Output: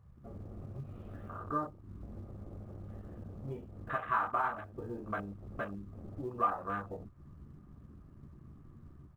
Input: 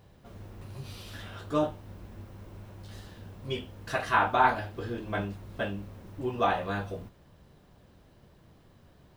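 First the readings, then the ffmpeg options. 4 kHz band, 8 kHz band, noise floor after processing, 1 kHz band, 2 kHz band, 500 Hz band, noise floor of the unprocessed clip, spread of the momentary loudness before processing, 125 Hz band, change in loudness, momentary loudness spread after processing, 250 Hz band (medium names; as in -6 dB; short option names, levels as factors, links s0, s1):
under -20 dB, no reading, -56 dBFS, -6.5 dB, -9.5 dB, -9.5 dB, -59 dBFS, 22 LU, -5.0 dB, -8.0 dB, 22 LU, -7.0 dB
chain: -filter_complex "[0:a]dynaudnorm=f=110:g=5:m=1.78,lowpass=f=2300:w=0.5412,lowpass=f=2300:w=1.3066,asplit=2[s0][s1];[s1]adelay=14,volume=0.355[s2];[s0][s2]amix=inputs=2:normalize=0,acrusher=bits=4:mode=log:mix=0:aa=0.000001,acompressor=threshold=0.00631:ratio=2.5,afwtdn=0.00631,equalizer=f=1200:w=4.7:g=14.5"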